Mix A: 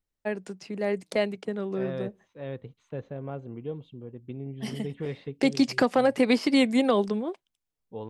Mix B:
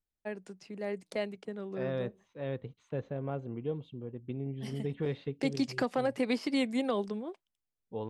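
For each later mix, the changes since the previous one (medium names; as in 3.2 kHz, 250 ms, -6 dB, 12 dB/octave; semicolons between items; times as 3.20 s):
first voice -8.5 dB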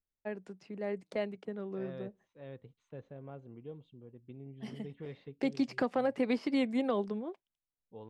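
first voice: add low-pass 2.3 kHz 6 dB/octave; second voice -11.0 dB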